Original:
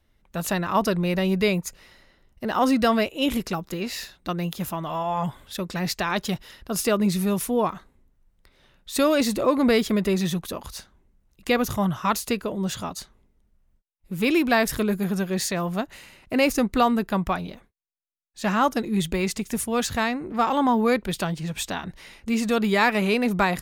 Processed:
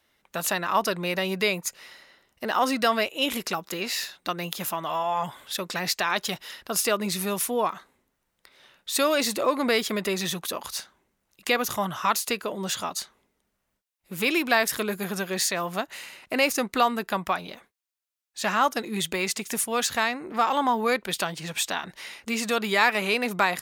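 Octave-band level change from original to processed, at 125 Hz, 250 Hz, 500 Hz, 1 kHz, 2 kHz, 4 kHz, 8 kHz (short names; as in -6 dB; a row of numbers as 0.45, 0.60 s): -9.5, -8.0, -3.0, 0.0, +1.5, +3.0, +3.5 dB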